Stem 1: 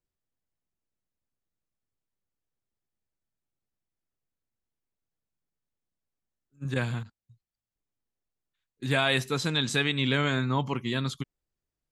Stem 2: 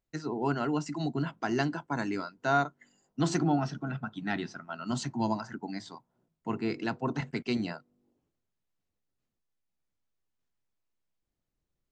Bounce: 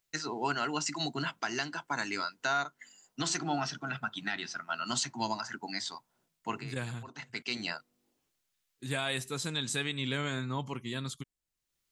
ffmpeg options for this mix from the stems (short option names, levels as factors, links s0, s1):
-filter_complex "[0:a]equalizer=f=8800:w=1:g=11,volume=0.398,asplit=2[s0][s1];[1:a]tiltshelf=f=970:g=-10,volume=1.33[s2];[s1]apad=whole_len=525572[s3];[s2][s3]sidechaincompress=threshold=0.00224:ratio=12:attack=20:release=486[s4];[s0][s4]amix=inputs=2:normalize=0,alimiter=limit=0.1:level=0:latency=1:release=299"